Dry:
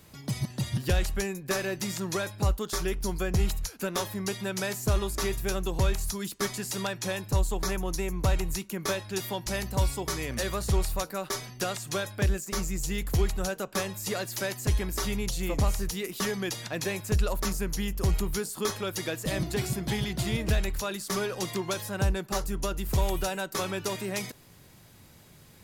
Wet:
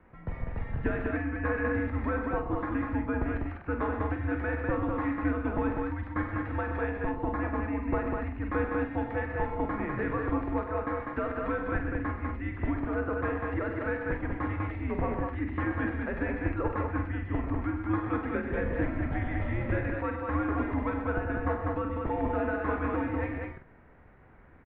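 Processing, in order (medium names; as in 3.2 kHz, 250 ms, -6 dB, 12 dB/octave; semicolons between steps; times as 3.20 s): tape speed +4%; doubling 45 ms -7.5 dB; loudspeakers at several distances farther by 33 m -11 dB, 44 m -9 dB, 68 m -3 dB; mistuned SSB -120 Hz 150–2100 Hz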